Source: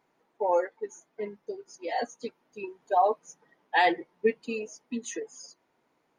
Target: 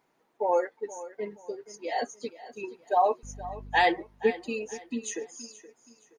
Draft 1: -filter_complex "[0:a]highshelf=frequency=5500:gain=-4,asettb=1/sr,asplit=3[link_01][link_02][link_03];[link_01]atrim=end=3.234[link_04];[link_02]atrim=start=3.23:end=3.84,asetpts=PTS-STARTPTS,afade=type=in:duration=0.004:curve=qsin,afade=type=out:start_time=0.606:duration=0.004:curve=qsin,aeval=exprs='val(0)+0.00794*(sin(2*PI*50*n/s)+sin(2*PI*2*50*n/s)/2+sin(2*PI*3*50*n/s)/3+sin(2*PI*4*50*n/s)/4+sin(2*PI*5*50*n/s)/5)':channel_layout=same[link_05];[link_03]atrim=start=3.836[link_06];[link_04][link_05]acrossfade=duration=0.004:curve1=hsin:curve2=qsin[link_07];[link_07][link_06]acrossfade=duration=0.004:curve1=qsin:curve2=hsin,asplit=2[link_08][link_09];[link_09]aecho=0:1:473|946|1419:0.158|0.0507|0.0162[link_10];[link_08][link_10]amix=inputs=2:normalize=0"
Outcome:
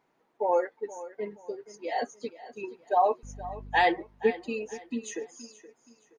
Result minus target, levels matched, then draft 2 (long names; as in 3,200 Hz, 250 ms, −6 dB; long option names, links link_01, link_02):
8,000 Hz band −5.0 dB
-filter_complex "[0:a]highshelf=frequency=5500:gain=4.5,asettb=1/sr,asplit=3[link_01][link_02][link_03];[link_01]atrim=end=3.234[link_04];[link_02]atrim=start=3.23:end=3.84,asetpts=PTS-STARTPTS,afade=type=in:duration=0.004:curve=qsin,afade=type=out:start_time=0.606:duration=0.004:curve=qsin,aeval=exprs='val(0)+0.00794*(sin(2*PI*50*n/s)+sin(2*PI*2*50*n/s)/2+sin(2*PI*3*50*n/s)/3+sin(2*PI*4*50*n/s)/4+sin(2*PI*5*50*n/s)/5)':channel_layout=same[link_05];[link_03]atrim=start=3.836[link_06];[link_04][link_05]acrossfade=duration=0.004:curve1=hsin:curve2=qsin[link_07];[link_07][link_06]acrossfade=duration=0.004:curve1=qsin:curve2=hsin,asplit=2[link_08][link_09];[link_09]aecho=0:1:473|946|1419:0.158|0.0507|0.0162[link_10];[link_08][link_10]amix=inputs=2:normalize=0"